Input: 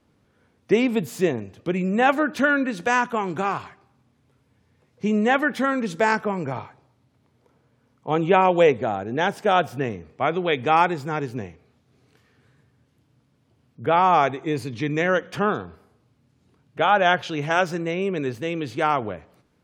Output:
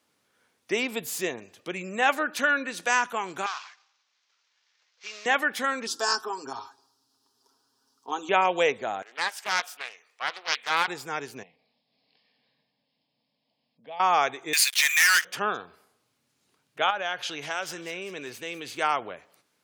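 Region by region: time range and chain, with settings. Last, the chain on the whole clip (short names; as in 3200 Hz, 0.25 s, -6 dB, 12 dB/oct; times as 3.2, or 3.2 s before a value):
3.46–5.26 CVSD 32 kbps + HPF 1100 Hz
5.87–8.29 bell 5000 Hz +12.5 dB 0.49 oct + fixed phaser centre 580 Hz, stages 6 + comb 7.4 ms, depth 69%
9.02–10.88 HPF 1100 Hz + Doppler distortion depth 0.43 ms
11.43–14 compressor 1.5:1, threshold -50 dBFS + brick-wall FIR low-pass 5400 Hz + fixed phaser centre 370 Hz, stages 6
14.53–15.25 inverse Chebyshev high-pass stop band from 460 Hz, stop band 60 dB + sample leveller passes 5
16.9–18.78 compressor 2.5:1, threshold -25 dBFS + thin delay 0.197 s, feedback 58%, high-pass 2500 Hz, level -12.5 dB
whole clip: HPF 940 Hz 6 dB/oct; high shelf 4300 Hz +9.5 dB; gain -1.5 dB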